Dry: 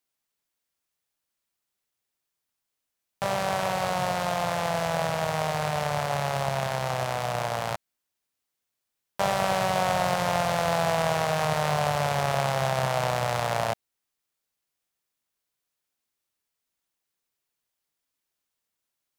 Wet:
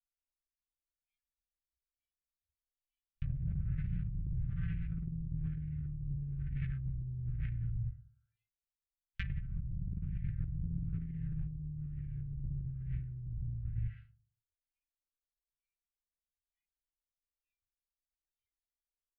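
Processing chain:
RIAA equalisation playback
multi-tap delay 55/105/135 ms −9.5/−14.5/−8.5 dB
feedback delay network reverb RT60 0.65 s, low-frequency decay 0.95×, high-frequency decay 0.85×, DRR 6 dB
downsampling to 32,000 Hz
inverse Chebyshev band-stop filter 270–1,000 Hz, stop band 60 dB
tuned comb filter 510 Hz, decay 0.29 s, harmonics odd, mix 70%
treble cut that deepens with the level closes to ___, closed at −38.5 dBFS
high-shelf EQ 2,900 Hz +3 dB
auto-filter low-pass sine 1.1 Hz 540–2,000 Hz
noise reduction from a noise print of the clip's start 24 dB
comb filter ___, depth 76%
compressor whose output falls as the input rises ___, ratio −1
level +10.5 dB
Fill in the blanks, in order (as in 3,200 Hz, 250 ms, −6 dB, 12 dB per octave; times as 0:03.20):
480 Hz, 5.2 ms, −48 dBFS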